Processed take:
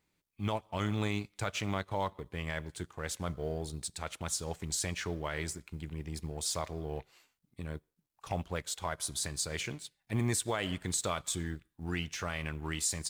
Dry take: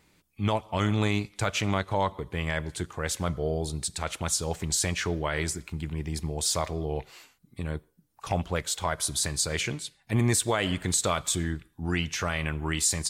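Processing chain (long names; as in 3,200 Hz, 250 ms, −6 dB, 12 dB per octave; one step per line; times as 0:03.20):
mu-law and A-law mismatch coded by A
level −6.5 dB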